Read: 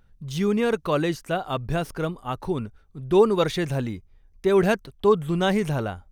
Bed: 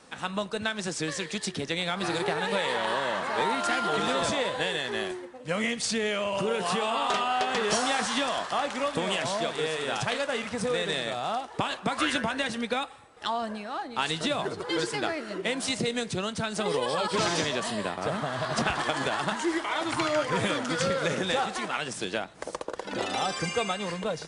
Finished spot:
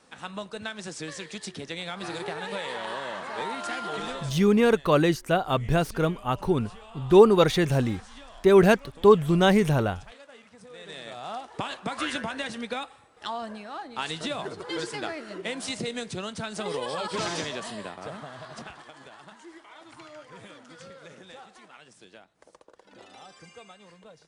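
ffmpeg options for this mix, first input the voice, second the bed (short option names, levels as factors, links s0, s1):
-filter_complex "[0:a]adelay=4000,volume=1.33[s0];[1:a]volume=3.55,afade=t=out:st=4.04:d=0.32:silence=0.188365,afade=t=in:st=10.7:d=0.82:silence=0.149624,afade=t=out:st=17.3:d=1.55:silence=0.158489[s1];[s0][s1]amix=inputs=2:normalize=0"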